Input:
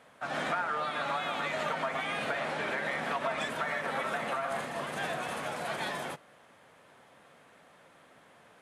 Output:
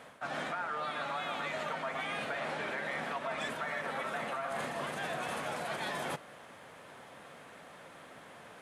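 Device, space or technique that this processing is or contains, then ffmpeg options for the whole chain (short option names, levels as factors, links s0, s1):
compression on the reversed sound: -af "areverse,acompressor=threshold=0.00891:ratio=6,areverse,volume=2.11"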